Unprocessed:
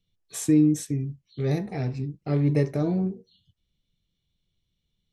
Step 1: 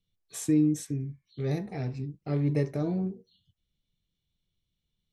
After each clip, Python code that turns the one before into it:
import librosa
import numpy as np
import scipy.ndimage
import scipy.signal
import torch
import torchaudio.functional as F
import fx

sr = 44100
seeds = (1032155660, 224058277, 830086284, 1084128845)

y = fx.spec_repair(x, sr, seeds[0], start_s=0.86, length_s=0.37, low_hz=760.0, high_hz=2400.0, source='both')
y = y * librosa.db_to_amplitude(-4.5)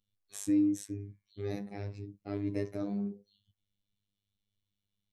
y = fx.robotise(x, sr, hz=101.0)
y = y * librosa.db_to_amplitude(-3.0)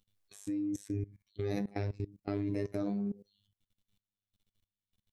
y = fx.level_steps(x, sr, step_db=21)
y = y * librosa.db_to_amplitude(8.5)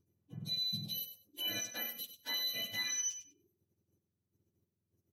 y = fx.octave_mirror(x, sr, pivot_hz=1100.0)
y = fx.echo_feedback(y, sr, ms=98, feedback_pct=17, wet_db=-10.5)